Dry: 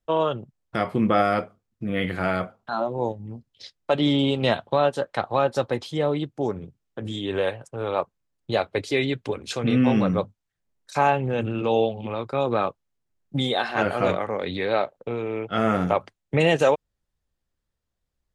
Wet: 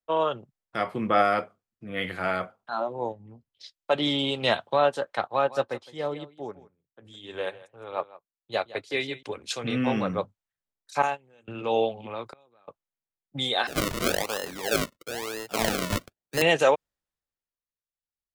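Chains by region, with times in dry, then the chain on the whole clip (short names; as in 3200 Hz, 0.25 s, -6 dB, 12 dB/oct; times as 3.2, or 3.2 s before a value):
5.27–9.23 echo 0.162 s -11.5 dB + upward expander, over -43 dBFS
11.02–11.48 bell 7700 Hz +14 dB 1.4 oct + gate -20 dBFS, range -25 dB + compressor 10:1, threshold -20 dBFS
12.26–12.68 high shelf 4200 Hz +7.5 dB + flipped gate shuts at -19 dBFS, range -29 dB
13.67–16.42 HPF 140 Hz + decimation with a swept rate 37× 1 Hz
whole clip: low shelf 380 Hz -10.5 dB; three-band expander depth 40%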